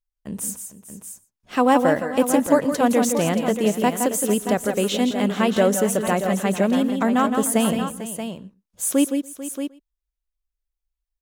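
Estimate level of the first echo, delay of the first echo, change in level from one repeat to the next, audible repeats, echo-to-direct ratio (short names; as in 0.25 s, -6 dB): -22.5 dB, 0.119 s, no steady repeat, 6, -5.0 dB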